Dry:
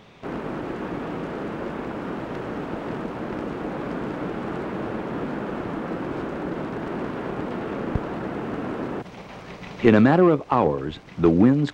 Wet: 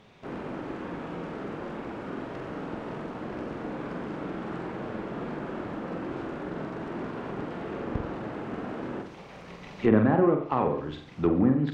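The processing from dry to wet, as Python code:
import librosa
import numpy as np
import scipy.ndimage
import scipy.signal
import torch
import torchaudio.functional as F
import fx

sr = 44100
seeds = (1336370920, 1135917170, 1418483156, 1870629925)

y = fx.room_flutter(x, sr, wall_m=7.9, rt60_s=0.49)
y = fx.env_lowpass_down(y, sr, base_hz=1700.0, full_db=-11.5)
y = y * librosa.db_to_amplitude(-7.0)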